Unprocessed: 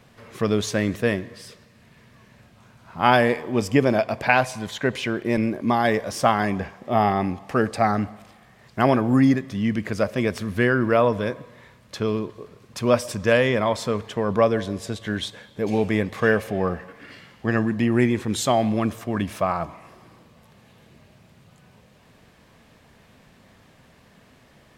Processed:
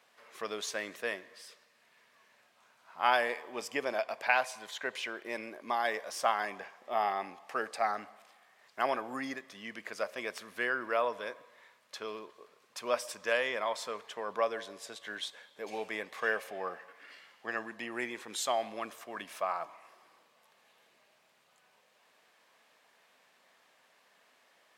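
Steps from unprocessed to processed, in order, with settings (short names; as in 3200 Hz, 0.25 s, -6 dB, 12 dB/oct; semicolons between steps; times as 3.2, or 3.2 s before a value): HPF 660 Hz 12 dB/oct; gain -8 dB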